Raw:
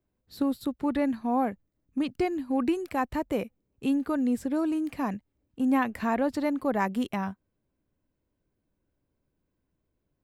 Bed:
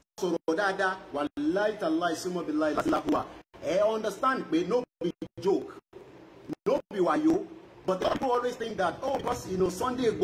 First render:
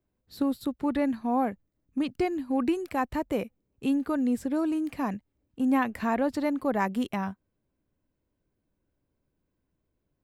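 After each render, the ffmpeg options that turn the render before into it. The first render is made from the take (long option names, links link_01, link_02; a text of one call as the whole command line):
ffmpeg -i in.wav -af anull out.wav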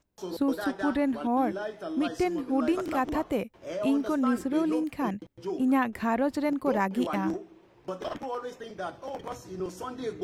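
ffmpeg -i in.wav -i bed.wav -filter_complex "[1:a]volume=-7.5dB[link_01];[0:a][link_01]amix=inputs=2:normalize=0" out.wav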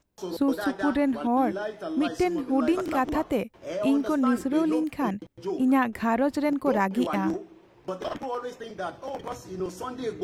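ffmpeg -i in.wav -af "volume=2.5dB" out.wav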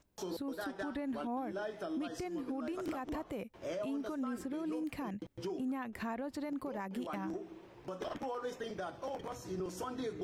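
ffmpeg -i in.wav -af "acompressor=threshold=-28dB:ratio=6,alimiter=level_in=7dB:limit=-24dB:level=0:latency=1:release=259,volume=-7dB" out.wav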